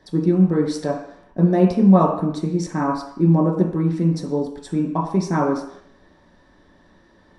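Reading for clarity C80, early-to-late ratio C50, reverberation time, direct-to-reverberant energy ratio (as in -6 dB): 8.0 dB, 5.5 dB, 0.70 s, -2.5 dB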